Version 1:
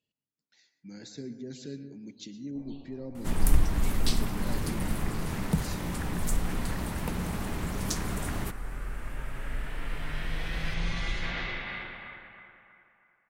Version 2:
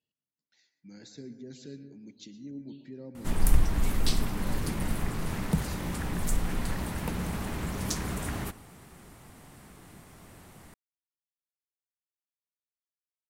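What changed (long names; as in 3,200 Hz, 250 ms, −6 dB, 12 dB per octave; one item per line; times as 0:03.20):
speech −4.0 dB
first sound: muted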